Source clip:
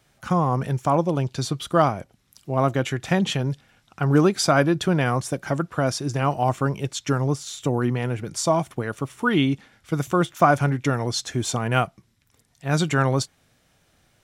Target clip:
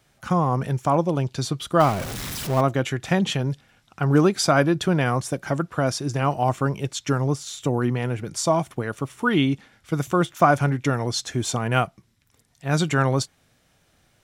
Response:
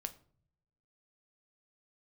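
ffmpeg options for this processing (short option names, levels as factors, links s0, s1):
-filter_complex "[0:a]asettb=1/sr,asplit=3[s0][s1][s2];[s0]atrim=end=1.804[s3];[s1]atrim=start=1.8:end=2.61,asetpts=PTS-STARTPTS,afade=t=in:d=0.004:c=qsin,afade=t=out:st=0.806:d=0.004:c=qsin,aeval=exprs='val(0)+0.5*0.0531*sgn(val(0))':c=same[s4];[s2]atrim=start=2.606[s5];[s3][s4]acrossfade=d=0.004:c1=hsin:c2=qsin[s6];[s6][s5]acrossfade=d=0.004:c1=qsin:c2=hsin"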